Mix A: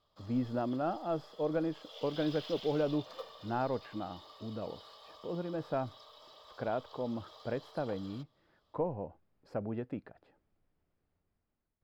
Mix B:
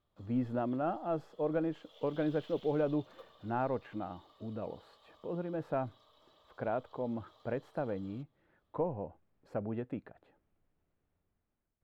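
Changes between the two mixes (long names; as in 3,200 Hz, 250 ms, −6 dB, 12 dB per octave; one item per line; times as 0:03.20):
background −9.5 dB
master: add parametric band 5,000 Hz −11.5 dB 0.29 octaves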